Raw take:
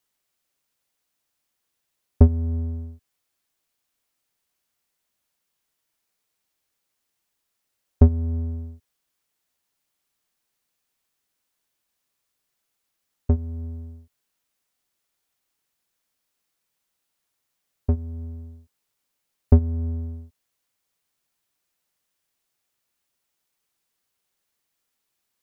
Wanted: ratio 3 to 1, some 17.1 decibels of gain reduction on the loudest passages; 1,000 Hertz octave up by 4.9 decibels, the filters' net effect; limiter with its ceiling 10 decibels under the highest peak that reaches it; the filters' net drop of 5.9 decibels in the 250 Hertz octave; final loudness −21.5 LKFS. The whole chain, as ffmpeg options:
ffmpeg -i in.wav -af "equalizer=frequency=250:width_type=o:gain=-6.5,equalizer=frequency=1000:width_type=o:gain=7.5,acompressor=threshold=-34dB:ratio=3,volume=18.5dB,alimiter=limit=-13dB:level=0:latency=1" out.wav

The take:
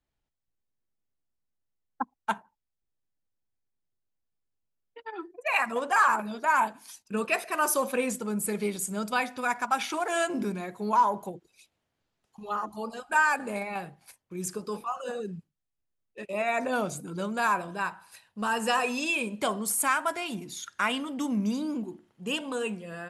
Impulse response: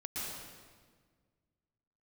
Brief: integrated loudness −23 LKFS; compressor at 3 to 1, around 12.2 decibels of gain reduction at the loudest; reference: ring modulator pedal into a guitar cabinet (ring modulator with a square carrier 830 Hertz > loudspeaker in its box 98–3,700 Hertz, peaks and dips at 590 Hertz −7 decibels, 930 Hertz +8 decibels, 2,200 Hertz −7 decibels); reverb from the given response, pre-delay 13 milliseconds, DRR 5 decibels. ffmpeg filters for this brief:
-filter_complex "[0:a]acompressor=threshold=-35dB:ratio=3,asplit=2[link_01][link_02];[1:a]atrim=start_sample=2205,adelay=13[link_03];[link_02][link_03]afir=irnorm=-1:irlink=0,volume=-7dB[link_04];[link_01][link_04]amix=inputs=2:normalize=0,aeval=exprs='val(0)*sgn(sin(2*PI*830*n/s))':channel_layout=same,highpass=98,equalizer=frequency=590:width_type=q:width=4:gain=-7,equalizer=frequency=930:width_type=q:width=4:gain=8,equalizer=frequency=2200:width_type=q:width=4:gain=-7,lowpass=frequency=3700:width=0.5412,lowpass=frequency=3700:width=1.3066,volume=13.5dB"

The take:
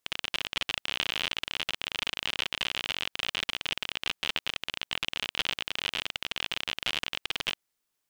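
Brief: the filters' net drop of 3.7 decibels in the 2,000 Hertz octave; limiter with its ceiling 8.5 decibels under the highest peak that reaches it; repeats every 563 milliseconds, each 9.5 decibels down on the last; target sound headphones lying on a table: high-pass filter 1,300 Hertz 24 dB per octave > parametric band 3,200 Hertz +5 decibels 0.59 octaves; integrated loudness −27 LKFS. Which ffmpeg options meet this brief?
ffmpeg -i in.wav -af "equalizer=frequency=2000:width_type=o:gain=-8,alimiter=limit=-18dB:level=0:latency=1,highpass=frequency=1300:width=0.5412,highpass=frequency=1300:width=1.3066,equalizer=frequency=3200:width_type=o:width=0.59:gain=5,aecho=1:1:563|1126|1689|2252:0.335|0.111|0.0365|0.012,volume=6.5dB" out.wav

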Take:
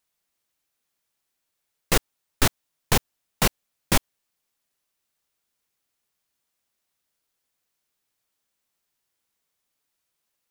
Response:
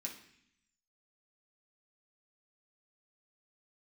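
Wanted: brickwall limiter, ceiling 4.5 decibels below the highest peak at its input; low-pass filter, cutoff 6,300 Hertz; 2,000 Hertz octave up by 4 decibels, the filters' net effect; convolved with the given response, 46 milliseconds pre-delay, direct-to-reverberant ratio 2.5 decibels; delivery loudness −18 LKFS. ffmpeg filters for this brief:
-filter_complex "[0:a]lowpass=6300,equalizer=frequency=2000:width_type=o:gain=5,alimiter=limit=-10.5dB:level=0:latency=1,asplit=2[link_01][link_02];[1:a]atrim=start_sample=2205,adelay=46[link_03];[link_02][link_03]afir=irnorm=-1:irlink=0,volume=0dB[link_04];[link_01][link_04]amix=inputs=2:normalize=0,volume=8.5dB"

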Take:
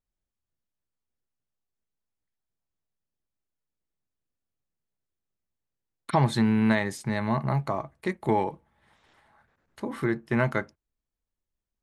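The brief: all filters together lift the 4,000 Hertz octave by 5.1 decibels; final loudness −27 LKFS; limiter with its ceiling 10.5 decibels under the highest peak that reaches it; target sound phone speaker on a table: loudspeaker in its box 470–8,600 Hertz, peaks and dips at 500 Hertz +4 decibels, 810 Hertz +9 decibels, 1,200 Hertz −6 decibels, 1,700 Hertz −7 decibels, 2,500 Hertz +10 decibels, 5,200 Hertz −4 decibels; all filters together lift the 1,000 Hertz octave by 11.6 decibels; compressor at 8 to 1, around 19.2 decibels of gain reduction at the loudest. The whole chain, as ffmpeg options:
ffmpeg -i in.wav -af "equalizer=frequency=1000:width_type=o:gain=7,equalizer=frequency=4000:width_type=o:gain=5,acompressor=threshold=-34dB:ratio=8,alimiter=level_in=4.5dB:limit=-24dB:level=0:latency=1,volume=-4.5dB,highpass=frequency=470:width=0.5412,highpass=frequency=470:width=1.3066,equalizer=frequency=500:width_type=q:width=4:gain=4,equalizer=frequency=810:width_type=q:width=4:gain=9,equalizer=frequency=1200:width_type=q:width=4:gain=-6,equalizer=frequency=1700:width_type=q:width=4:gain=-7,equalizer=frequency=2500:width_type=q:width=4:gain=10,equalizer=frequency=5200:width_type=q:width=4:gain=-4,lowpass=frequency=8600:width=0.5412,lowpass=frequency=8600:width=1.3066,volume=14dB" out.wav

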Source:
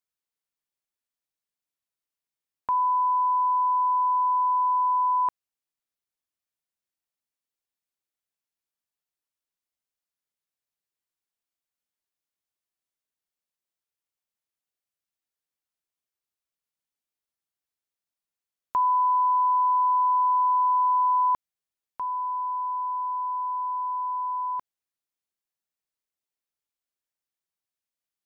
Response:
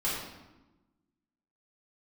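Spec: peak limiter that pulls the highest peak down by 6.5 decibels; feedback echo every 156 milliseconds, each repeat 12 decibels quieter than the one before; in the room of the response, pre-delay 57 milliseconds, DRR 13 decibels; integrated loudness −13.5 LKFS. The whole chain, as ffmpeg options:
-filter_complex "[0:a]alimiter=level_in=1dB:limit=-24dB:level=0:latency=1,volume=-1dB,aecho=1:1:156|312|468:0.251|0.0628|0.0157,asplit=2[link_01][link_02];[1:a]atrim=start_sample=2205,adelay=57[link_03];[link_02][link_03]afir=irnorm=-1:irlink=0,volume=-21dB[link_04];[link_01][link_04]amix=inputs=2:normalize=0,volume=11.5dB"

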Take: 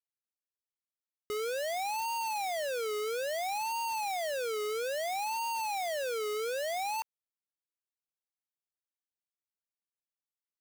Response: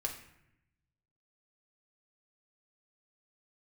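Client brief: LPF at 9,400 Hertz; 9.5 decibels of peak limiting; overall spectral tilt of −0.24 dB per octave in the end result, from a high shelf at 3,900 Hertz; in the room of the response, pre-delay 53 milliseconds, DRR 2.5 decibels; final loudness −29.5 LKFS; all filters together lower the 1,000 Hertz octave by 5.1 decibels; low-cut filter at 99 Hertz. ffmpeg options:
-filter_complex "[0:a]highpass=99,lowpass=9400,equalizer=frequency=1000:width_type=o:gain=-7,highshelf=frequency=3900:gain=4.5,alimiter=level_in=12.5dB:limit=-24dB:level=0:latency=1,volume=-12.5dB,asplit=2[link_01][link_02];[1:a]atrim=start_sample=2205,adelay=53[link_03];[link_02][link_03]afir=irnorm=-1:irlink=0,volume=-4dB[link_04];[link_01][link_04]amix=inputs=2:normalize=0,volume=11dB"

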